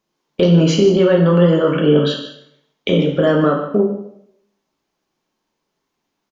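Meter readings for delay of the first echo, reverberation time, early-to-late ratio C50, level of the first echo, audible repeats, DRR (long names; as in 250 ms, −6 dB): 152 ms, 0.75 s, 5.5 dB, −13.5 dB, 1, 0.5 dB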